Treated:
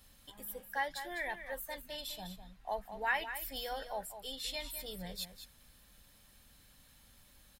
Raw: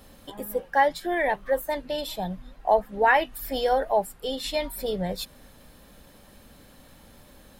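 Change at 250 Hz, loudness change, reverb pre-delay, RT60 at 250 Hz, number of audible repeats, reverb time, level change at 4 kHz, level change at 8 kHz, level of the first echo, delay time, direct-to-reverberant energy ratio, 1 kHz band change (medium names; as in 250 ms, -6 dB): -17.0 dB, -14.0 dB, no reverb, no reverb, 1, no reverb, -7.0 dB, -5.5 dB, -10.5 dB, 203 ms, no reverb, -16.0 dB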